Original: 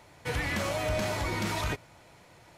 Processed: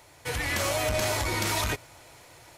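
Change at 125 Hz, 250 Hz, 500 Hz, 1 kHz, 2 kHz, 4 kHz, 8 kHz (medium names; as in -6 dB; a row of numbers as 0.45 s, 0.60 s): +1.0 dB, -1.0 dB, +2.5 dB, +3.0 dB, +3.5 dB, +6.0 dB, +9.5 dB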